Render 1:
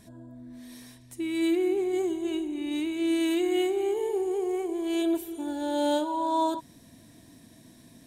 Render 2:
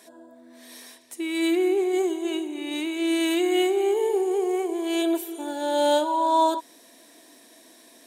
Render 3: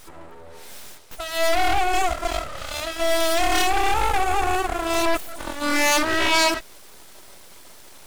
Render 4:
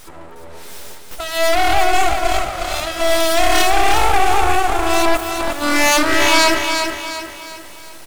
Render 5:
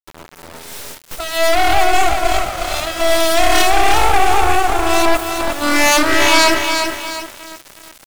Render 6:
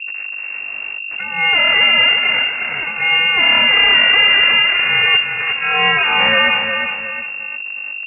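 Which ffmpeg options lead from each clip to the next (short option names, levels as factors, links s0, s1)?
-af "highpass=f=360:w=0.5412,highpass=f=360:w=1.3066,volume=2.11"
-af "aeval=exprs='abs(val(0))':c=same,equalizer=f=490:t=o:w=1.6:g=4,aeval=exprs='0.376*(cos(1*acos(clip(val(0)/0.376,-1,1)))-cos(1*PI/2))+0.0596*(cos(5*acos(clip(val(0)/0.376,-1,1)))-cos(5*PI/2))+0.168*(cos(8*acos(clip(val(0)/0.376,-1,1)))-cos(8*PI/2))':c=same,volume=1.58"
-af "aecho=1:1:359|718|1077|1436|1795:0.501|0.216|0.0927|0.0398|0.0171,volume=1.78"
-af "aeval=exprs='val(0)*gte(abs(val(0)),0.0355)':c=same,volume=1.19"
-af "aeval=exprs='val(0)+0.0631*(sin(2*PI*50*n/s)+sin(2*PI*2*50*n/s)/2+sin(2*PI*3*50*n/s)/3+sin(2*PI*4*50*n/s)/4+sin(2*PI*5*50*n/s)/5)':c=same,lowpass=f=2400:t=q:w=0.5098,lowpass=f=2400:t=q:w=0.6013,lowpass=f=2400:t=q:w=0.9,lowpass=f=2400:t=q:w=2.563,afreqshift=-2800,volume=0.841"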